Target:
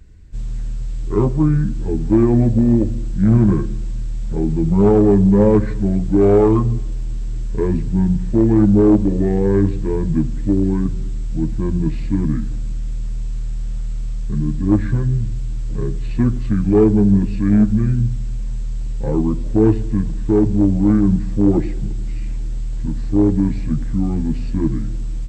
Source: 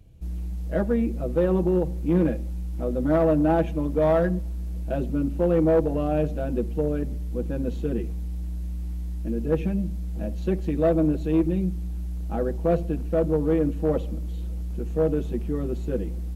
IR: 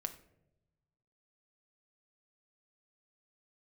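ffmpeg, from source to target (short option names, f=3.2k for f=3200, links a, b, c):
-filter_complex "[0:a]asetrate=28533,aresample=44100,asplit=2[a][b];[1:a]atrim=start_sample=2205,asetrate=22491,aresample=44100[c];[b][c]afir=irnorm=-1:irlink=0,volume=-12.5dB[d];[a][d]amix=inputs=2:normalize=0,volume=6dB"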